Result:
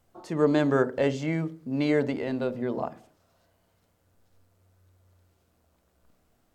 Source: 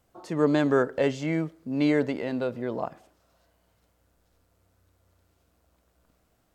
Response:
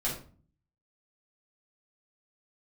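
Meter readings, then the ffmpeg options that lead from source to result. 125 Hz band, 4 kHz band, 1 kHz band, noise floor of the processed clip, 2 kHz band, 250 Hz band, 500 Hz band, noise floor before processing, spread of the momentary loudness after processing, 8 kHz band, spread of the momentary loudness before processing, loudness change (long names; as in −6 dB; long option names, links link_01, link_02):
+1.0 dB, −1.0 dB, −0.5 dB, −69 dBFS, −1.0 dB, −1.0 dB, 0.0 dB, −70 dBFS, 9 LU, can't be measured, 10 LU, −0.5 dB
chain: -filter_complex "[0:a]asplit=2[link_01][link_02];[link_02]tiltshelf=frequency=970:gain=8[link_03];[1:a]atrim=start_sample=2205,asetrate=74970,aresample=44100[link_04];[link_03][link_04]afir=irnorm=-1:irlink=0,volume=-17dB[link_05];[link_01][link_05]amix=inputs=2:normalize=0,volume=-1dB"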